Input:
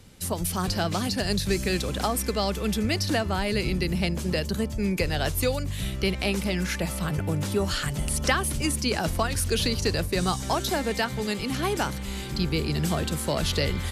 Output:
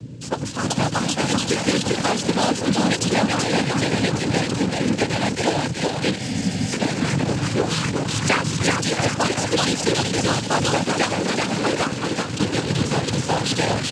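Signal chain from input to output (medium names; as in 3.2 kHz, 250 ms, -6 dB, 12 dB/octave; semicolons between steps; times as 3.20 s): feedback delay 382 ms, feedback 53%, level -3 dB; in parallel at -4 dB: bit crusher 4-bit; on the sum: hum 60 Hz, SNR 11 dB; noise-vocoded speech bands 8; spectral replace 6.23–6.70 s, 280–4700 Hz before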